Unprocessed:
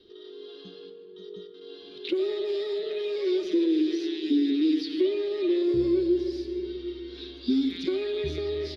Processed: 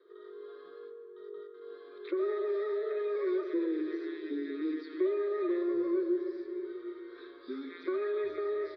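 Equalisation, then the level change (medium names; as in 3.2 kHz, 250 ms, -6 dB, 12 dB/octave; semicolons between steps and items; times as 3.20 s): cabinet simulation 440–3000 Hz, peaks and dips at 770 Hz +5 dB, 1.2 kHz +9 dB, 1.8 kHz +4 dB; peaking EQ 700 Hz +4 dB 1.3 oct; static phaser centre 780 Hz, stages 6; -1.0 dB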